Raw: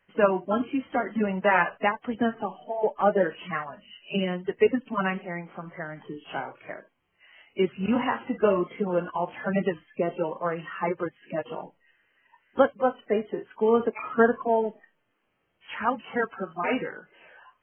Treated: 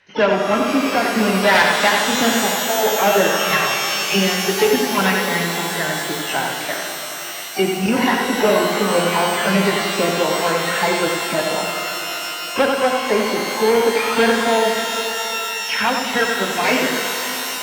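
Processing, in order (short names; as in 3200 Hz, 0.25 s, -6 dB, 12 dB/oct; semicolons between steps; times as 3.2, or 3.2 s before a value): air absorption 73 m; notches 60/120/180/240/300/360/420/480/540/600 Hz; thinning echo 89 ms, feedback 22%, high-pass 230 Hz, level -6 dB; in parallel at -2 dB: compressor, threshold -30 dBFS, peak gain reduction 15.5 dB; on the sum: harmoniser +12 st -15 dB; soft clip -14 dBFS, distortion -16 dB; HPF 40 Hz; high shelf 2200 Hz +10.5 dB; notch 1200 Hz, Q 7.9; shimmer reverb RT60 3.7 s, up +12 st, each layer -2 dB, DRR 5 dB; gain +5 dB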